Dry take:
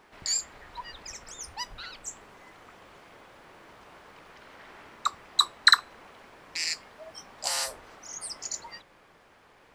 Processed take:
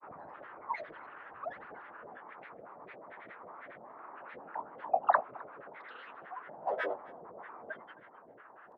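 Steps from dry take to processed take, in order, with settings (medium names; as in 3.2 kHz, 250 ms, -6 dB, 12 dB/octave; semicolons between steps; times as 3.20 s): low-pass 1.1 kHz 24 dB/octave; level-controlled noise filter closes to 790 Hz, open at -34.5 dBFS; high-pass 330 Hz 12 dB/octave; comb 1.1 ms, depth 40%; tape speed +11%; flange 1.9 Hz, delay 7.5 ms, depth 9.5 ms, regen -73%; granulator 100 ms, grains 22 per s, pitch spread up and down by 12 st; echo from a far wall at 45 m, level -22 dB; tape noise reduction on one side only encoder only; trim +10 dB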